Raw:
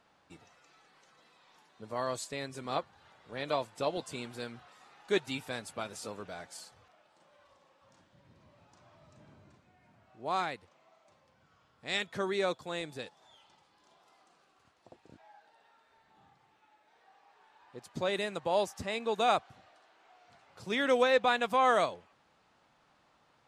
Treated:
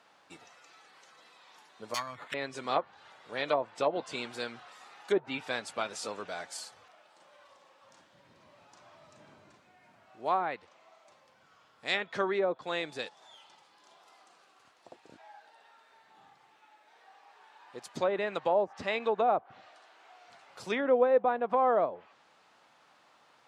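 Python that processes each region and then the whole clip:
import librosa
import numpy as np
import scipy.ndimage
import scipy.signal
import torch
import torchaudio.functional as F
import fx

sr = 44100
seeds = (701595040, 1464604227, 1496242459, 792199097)

y = fx.chain(x, sr, fx.curve_eq(hz=(110.0, 260.0, 390.0, 1200.0, 2300.0, 3400.0, 6900.0), db=(0, -8, -25, 0, 5, 14, -22)),
    fx.resample_bad(factor=8, down='none', up='zero_stuff'), at=(1.94, 2.34))
y = fx.env_lowpass_down(y, sr, base_hz=690.0, full_db=-26.0)
y = fx.highpass(y, sr, hz=490.0, slope=6)
y = F.gain(torch.from_numpy(y), 6.5).numpy()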